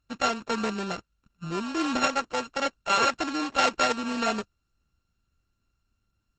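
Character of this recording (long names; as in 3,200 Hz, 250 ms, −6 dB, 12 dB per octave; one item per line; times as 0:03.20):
a buzz of ramps at a fixed pitch in blocks of 32 samples
Opus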